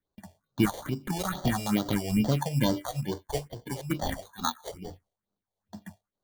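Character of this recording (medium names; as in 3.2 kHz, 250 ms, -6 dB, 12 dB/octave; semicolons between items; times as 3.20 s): aliases and images of a low sample rate 2.6 kHz, jitter 0%; phasing stages 4, 2.3 Hz, lowest notch 220–2400 Hz; random flutter of the level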